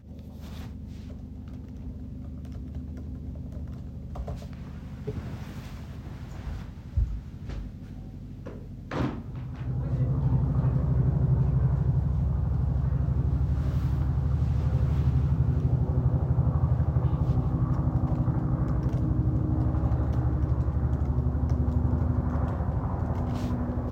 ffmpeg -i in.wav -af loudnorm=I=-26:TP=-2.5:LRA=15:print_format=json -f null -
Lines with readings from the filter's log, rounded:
"input_i" : "-28.0",
"input_tp" : "-12.8",
"input_lra" : "12.6",
"input_thresh" : "-38.9",